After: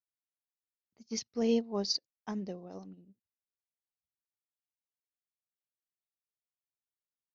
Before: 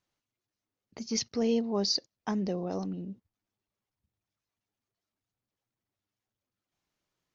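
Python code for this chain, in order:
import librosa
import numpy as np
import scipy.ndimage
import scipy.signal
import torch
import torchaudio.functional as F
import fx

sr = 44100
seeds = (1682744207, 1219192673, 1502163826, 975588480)

y = fx.upward_expand(x, sr, threshold_db=-42.0, expansion=2.5)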